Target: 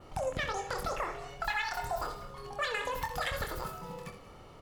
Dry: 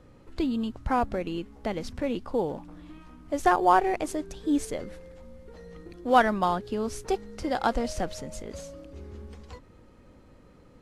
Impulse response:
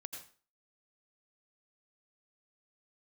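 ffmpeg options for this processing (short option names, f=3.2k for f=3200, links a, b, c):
-filter_complex "[0:a]equalizer=f=11k:w=0.95:g=-13,aecho=1:1:5.3:0.3,adynamicequalizer=threshold=0.00891:dfrequency=2100:dqfactor=1.1:tfrequency=2100:tqfactor=1.1:attack=5:release=100:ratio=0.375:range=3:mode=boostabove:tftype=bell,acompressor=threshold=-32dB:ratio=6,asetrate=103194,aresample=44100,aecho=1:1:25|64:0.501|0.299,asplit=2[a][b];[1:a]atrim=start_sample=2205,asetrate=38367,aresample=44100,adelay=84[c];[b][c]afir=irnorm=-1:irlink=0,volume=-8dB[d];[a][d]amix=inputs=2:normalize=0"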